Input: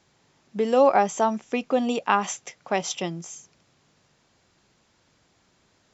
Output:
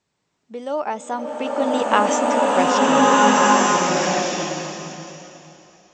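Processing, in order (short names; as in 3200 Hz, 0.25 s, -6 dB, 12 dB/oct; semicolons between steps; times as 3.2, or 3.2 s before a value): Doppler pass-by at 2.15, 30 m/s, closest 13 m; bloom reverb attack 1.52 s, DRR -8.5 dB; gain +4 dB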